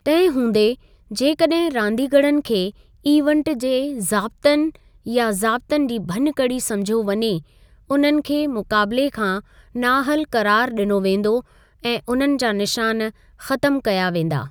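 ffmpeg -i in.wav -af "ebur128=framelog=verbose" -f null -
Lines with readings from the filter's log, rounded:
Integrated loudness:
  I:         -19.7 LUFS
  Threshold: -30.0 LUFS
Loudness range:
  LRA:         2.1 LU
  Threshold: -40.1 LUFS
  LRA low:   -21.0 LUFS
  LRA high:  -19.0 LUFS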